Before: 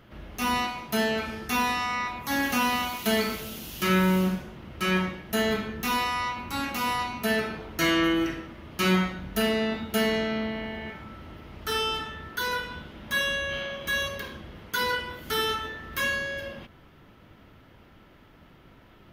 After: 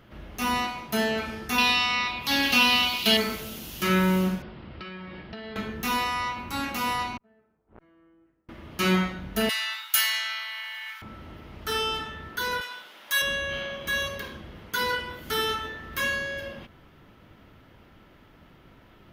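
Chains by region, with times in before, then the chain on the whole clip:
1.58–3.17 band shelf 3500 Hz +11.5 dB 1.3 oct + mismatched tape noise reduction encoder only
4.42–5.56 steep low-pass 5200 Hz 96 dB/oct + compressor 20:1, threshold -35 dBFS
7.17–8.49 LPF 1200 Hz + flipped gate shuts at -32 dBFS, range -35 dB + core saturation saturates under 950 Hz
9.49–11.02 steep high-pass 960 Hz + tilt +4 dB/oct
12.61–13.22 HPF 700 Hz + high shelf 4400 Hz +10 dB
whole clip: dry

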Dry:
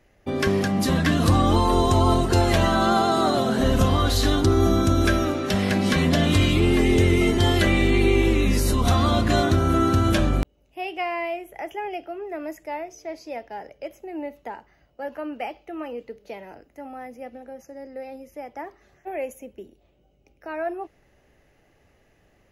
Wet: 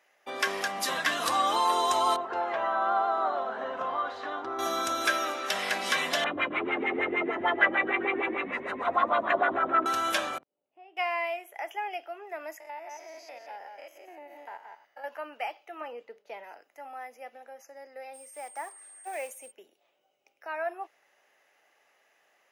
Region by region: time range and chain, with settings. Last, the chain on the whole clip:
2.16–4.59 LPF 1200 Hz + low shelf 440 Hz -5.5 dB
6.24–9.86 LFO low-pass sine 6.6 Hz 260–2100 Hz + bell 5200 Hz -15 dB 0.42 oct + frequency-shifting echo 0.13 s, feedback 52%, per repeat -44 Hz, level -11 dB
10.38–10.97 band-pass 150 Hz, Q 0.71 + compressor 2.5:1, threshold -43 dBFS
12.6–15.04 stepped spectrum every 0.1 s + echo 0.176 s -7.5 dB + compressor 4:1, threshold -34 dBFS
15.81–16.44 tilt -2 dB/oct + expander -49 dBFS
18.13–19.5 block floating point 5-bit + whine 8600 Hz -47 dBFS
whole clip: Chebyshev high-pass 900 Hz, order 2; notch 4300 Hz, Q 19

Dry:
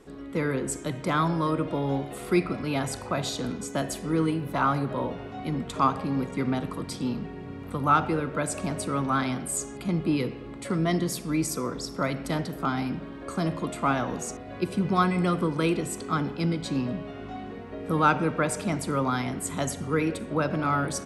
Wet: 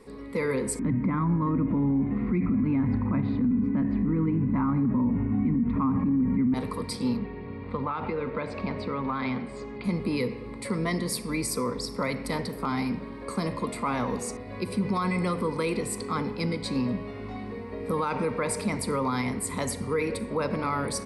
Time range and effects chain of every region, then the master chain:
0.79–6.54 LPF 2100 Hz 24 dB/oct + resonant low shelf 350 Hz +10.5 dB, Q 3
7.17–9.84 LPF 3800 Hz 24 dB/oct + compressor 10:1, threshold -25 dBFS
whole clip: ripple EQ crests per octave 0.92, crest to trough 10 dB; limiter -18.5 dBFS

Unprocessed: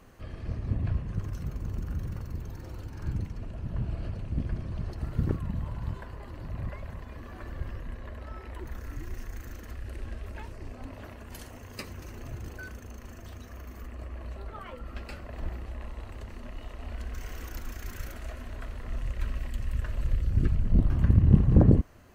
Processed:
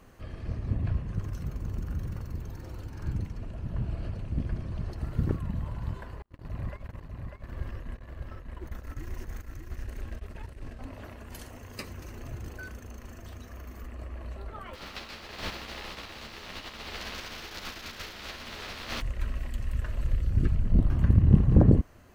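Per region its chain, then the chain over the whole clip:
6.22–10.79 gate -39 dBFS, range -41 dB + echo 0.596 s -4.5 dB
14.73–19 spectral contrast lowered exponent 0.32 + resonant high shelf 6200 Hz -13 dB, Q 1.5 + ensemble effect
whole clip: dry

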